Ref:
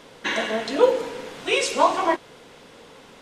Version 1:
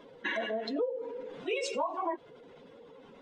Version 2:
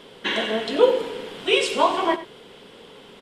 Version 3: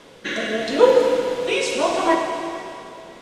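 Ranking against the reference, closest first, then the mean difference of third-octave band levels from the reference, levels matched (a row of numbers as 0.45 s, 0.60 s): 2, 3, 1; 2.0 dB, 4.0 dB, 7.5 dB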